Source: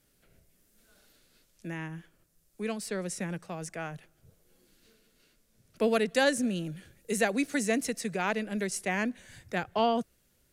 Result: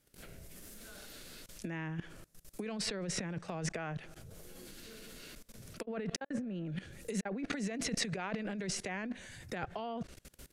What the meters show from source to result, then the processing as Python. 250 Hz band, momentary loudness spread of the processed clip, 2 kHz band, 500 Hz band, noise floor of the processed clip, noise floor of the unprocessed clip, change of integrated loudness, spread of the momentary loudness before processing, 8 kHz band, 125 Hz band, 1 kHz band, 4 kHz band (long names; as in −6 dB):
−6.5 dB, 16 LU, −9.0 dB, −11.0 dB, −67 dBFS, −69 dBFS, −8.5 dB, 15 LU, −4.0 dB, −1.0 dB, −10.5 dB, −3.0 dB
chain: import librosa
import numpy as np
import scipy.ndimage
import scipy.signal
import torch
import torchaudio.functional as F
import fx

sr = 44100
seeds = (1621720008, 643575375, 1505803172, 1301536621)

y = fx.level_steps(x, sr, step_db=23)
y = fx.env_lowpass_down(y, sr, base_hz=1800.0, full_db=-38.5)
y = fx.over_compress(y, sr, threshold_db=-50.0, ratio=-0.5)
y = F.gain(torch.from_numpy(y), 11.0).numpy()